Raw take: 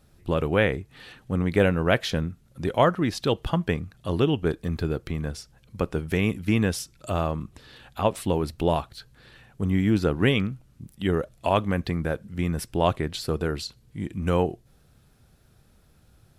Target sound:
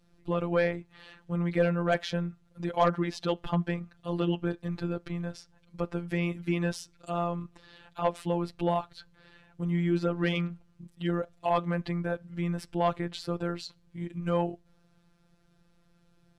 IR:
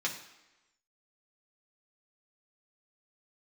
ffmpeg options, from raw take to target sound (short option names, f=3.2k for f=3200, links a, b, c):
-af "afftfilt=real='hypot(re,im)*cos(PI*b)':imag='0':win_size=1024:overlap=0.75,adynamicequalizer=threshold=0.0112:dfrequency=930:dqfactor=0.92:tfrequency=930:tqfactor=0.92:attack=5:release=100:ratio=0.375:range=2:mode=boostabove:tftype=bell,aeval=exprs='0.596*(cos(1*acos(clip(val(0)/0.596,-1,1)))-cos(1*PI/2))+0.0168*(cos(4*acos(clip(val(0)/0.596,-1,1)))-cos(4*PI/2))+0.0531*(cos(5*acos(clip(val(0)/0.596,-1,1)))-cos(5*PI/2))':c=same,adynamicsmooth=sensitivity=0.5:basefreq=7.5k,volume=-5dB"